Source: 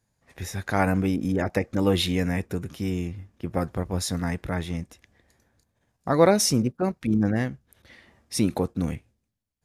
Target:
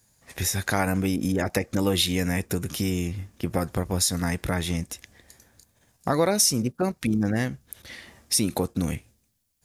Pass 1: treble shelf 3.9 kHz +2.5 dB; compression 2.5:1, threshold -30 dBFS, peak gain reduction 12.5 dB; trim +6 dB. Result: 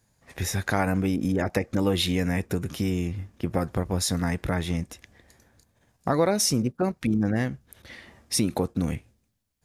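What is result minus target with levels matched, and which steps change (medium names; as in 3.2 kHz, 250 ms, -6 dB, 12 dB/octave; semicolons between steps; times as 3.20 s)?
8 kHz band -3.5 dB
change: treble shelf 3.9 kHz +13 dB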